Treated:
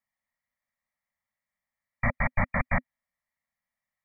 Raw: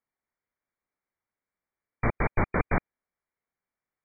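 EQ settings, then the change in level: elliptic band-stop 250–550 Hz; peaking EQ 1.9 kHz +10 dB 0.21 oct; band-stop 1.5 kHz, Q 7.3; 0.0 dB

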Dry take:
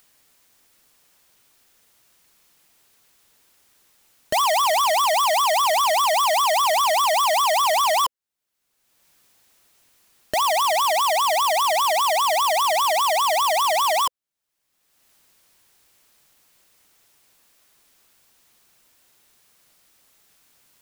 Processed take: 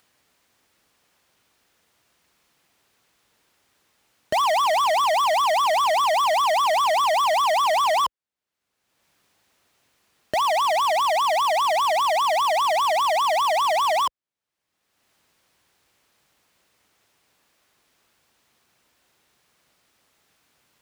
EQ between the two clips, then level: high-pass 47 Hz; low-pass 3.2 kHz 6 dB/octave; 0.0 dB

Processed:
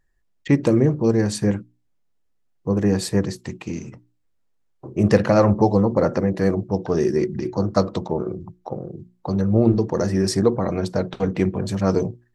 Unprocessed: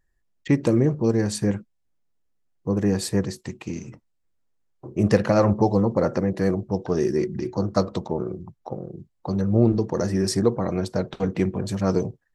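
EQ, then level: treble shelf 7.9 kHz -5 dB; hum notches 60/120/180/240/300/360 Hz; +3.0 dB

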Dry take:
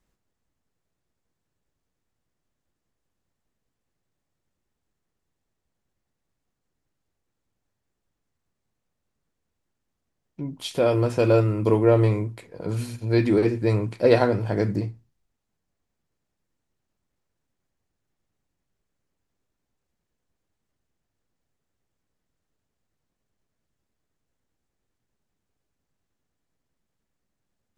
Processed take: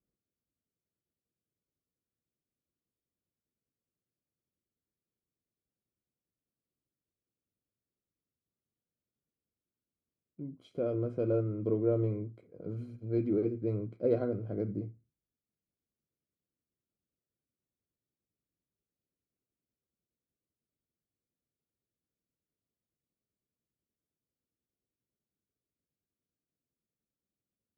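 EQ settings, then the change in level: boxcar filter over 49 samples; high-pass 53 Hz; bass shelf 170 Hz -9 dB; -5.5 dB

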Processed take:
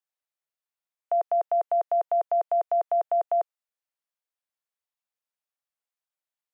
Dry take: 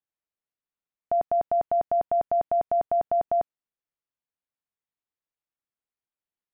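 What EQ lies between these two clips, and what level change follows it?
steep high-pass 490 Hz 36 dB/octave; 0.0 dB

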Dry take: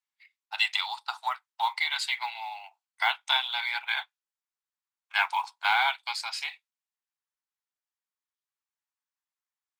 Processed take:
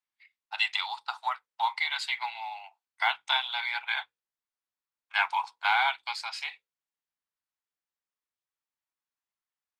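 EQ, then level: treble shelf 6.3 kHz -10 dB; hum notches 60/120/180/240/300/360/420/480/540 Hz; 0.0 dB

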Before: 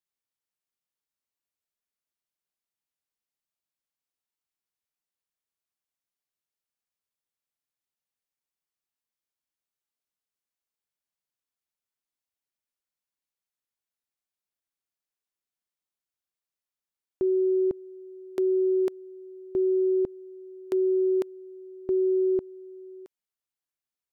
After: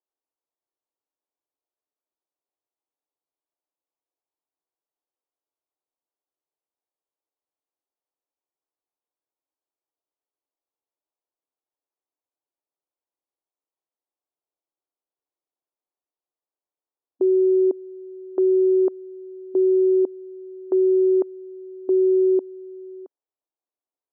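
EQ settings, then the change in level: brick-wall FIR high-pass 260 Hz; low-pass 1 kHz 24 dB/octave; +6.0 dB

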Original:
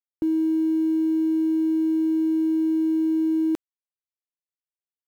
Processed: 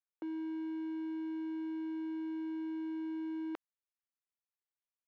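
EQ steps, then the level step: band-pass 770–2500 Hz; distance through air 60 m; -1.5 dB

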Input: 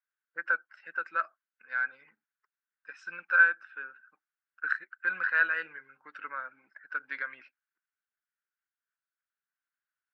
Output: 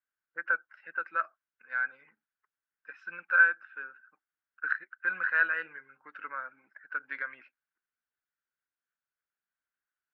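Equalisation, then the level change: low-pass 2.8 kHz 12 dB/octave; 0.0 dB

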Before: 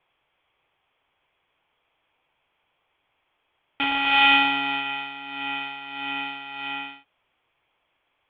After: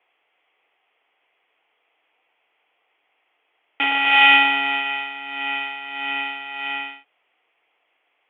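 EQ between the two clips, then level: cabinet simulation 300–3800 Hz, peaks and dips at 310 Hz +5 dB, 450 Hz +7 dB, 730 Hz +8 dB, 1.3 kHz +3 dB, 2 kHz +9 dB, 2.8 kHz +7 dB; -1.5 dB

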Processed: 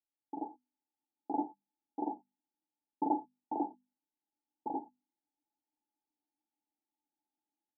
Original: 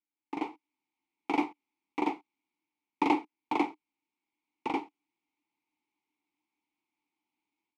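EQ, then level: rippled Chebyshev low-pass 880 Hz, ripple 6 dB; tilt EQ +3 dB/octave; hum notches 50/100/150/200/250 Hz; +1.5 dB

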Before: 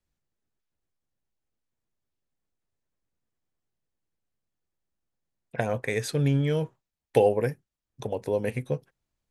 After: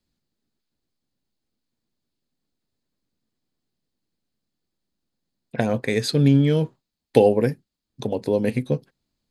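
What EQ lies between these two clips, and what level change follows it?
peaking EQ 240 Hz +10.5 dB 1.3 oct; peaking EQ 4.4 kHz +11 dB 0.72 oct; band-stop 5.7 kHz, Q 12; +1.5 dB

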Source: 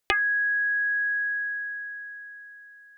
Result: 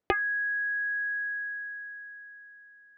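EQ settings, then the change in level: band-pass filter 220 Hz, Q 0.52; +7.0 dB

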